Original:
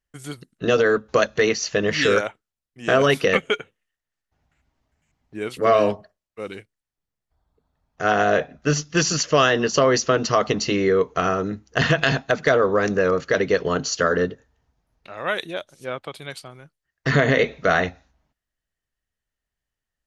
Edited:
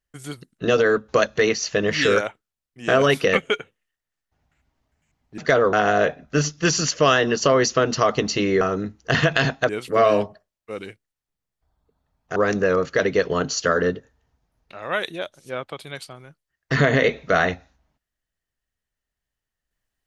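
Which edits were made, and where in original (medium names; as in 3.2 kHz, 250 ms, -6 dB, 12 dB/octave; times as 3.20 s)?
5.38–8.05 s: swap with 12.36–12.71 s
10.93–11.28 s: delete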